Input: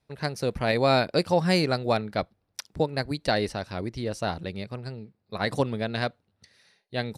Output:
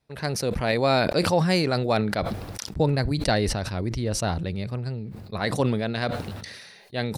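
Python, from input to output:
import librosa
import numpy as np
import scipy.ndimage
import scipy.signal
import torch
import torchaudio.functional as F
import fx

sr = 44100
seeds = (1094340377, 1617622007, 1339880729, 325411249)

y = fx.low_shelf(x, sr, hz=140.0, db=11.0, at=(2.68, 5.4))
y = fx.sustainer(y, sr, db_per_s=36.0)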